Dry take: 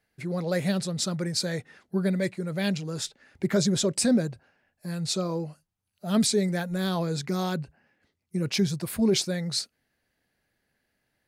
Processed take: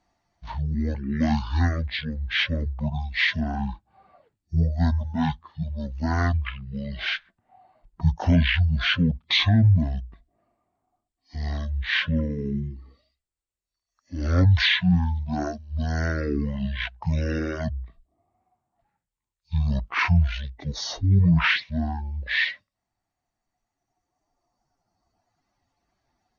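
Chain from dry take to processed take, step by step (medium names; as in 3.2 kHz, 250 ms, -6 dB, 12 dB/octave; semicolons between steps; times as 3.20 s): reverb removal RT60 1.2 s; speed mistake 78 rpm record played at 33 rpm; trim +4.5 dB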